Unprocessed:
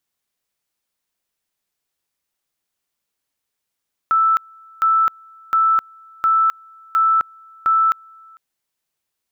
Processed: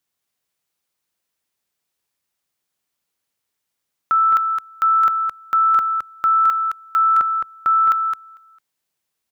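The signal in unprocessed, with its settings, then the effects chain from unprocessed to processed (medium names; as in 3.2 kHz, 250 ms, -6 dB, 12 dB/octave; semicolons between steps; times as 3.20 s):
two-level tone 1.32 kHz -12 dBFS, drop 29.5 dB, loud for 0.26 s, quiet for 0.45 s, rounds 6
high-pass 47 Hz; peaking EQ 150 Hz +2.5 dB 0.24 oct; delay 215 ms -5.5 dB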